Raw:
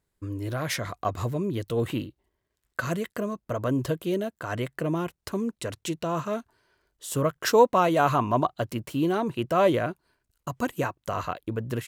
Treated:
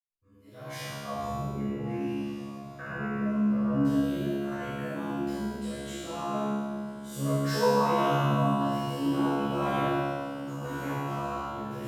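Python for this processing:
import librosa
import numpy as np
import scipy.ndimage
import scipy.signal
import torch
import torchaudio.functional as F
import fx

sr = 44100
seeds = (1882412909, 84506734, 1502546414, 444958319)

y = fx.fade_in_head(x, sr, length_s=0.96)
y = fx.brickwall_lowpass(y, sr, high_hz=2900.0, at=(1.32, 3.85))
y = fx.comb_fb(y, sr, f0_hz=70.0, decay_s=1.6, harmonics='all', damping=0.0, mix_pct=100)
y = fx.echo_diffused(y, sr, ms=1475, feedback_pct=41, wet_db=-13.0)
y = fx.room_shoebox(y, sr, seeds[0], volume_m3=600.0, walls='mixed', distance_m=5.9)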